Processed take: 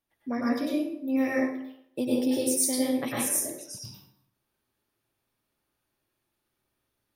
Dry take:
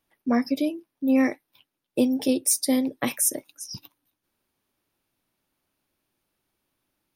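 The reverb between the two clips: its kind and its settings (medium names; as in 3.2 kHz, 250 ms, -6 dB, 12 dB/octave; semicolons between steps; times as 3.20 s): plate-style reverb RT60 0.74 s, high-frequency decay 0.65×, pre-delay 85 ms, DRR -6.5 dB; trim -9 dB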